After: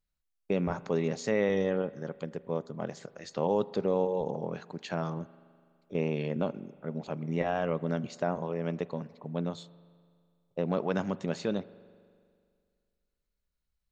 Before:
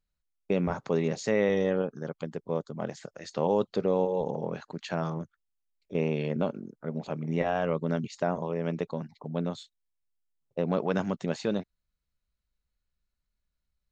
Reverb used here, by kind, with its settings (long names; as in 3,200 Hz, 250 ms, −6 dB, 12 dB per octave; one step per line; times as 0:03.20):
spring reverb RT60 2.1 s, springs 41 ms, chirp 40 ms, DRR 18.5 dB
level −2 dB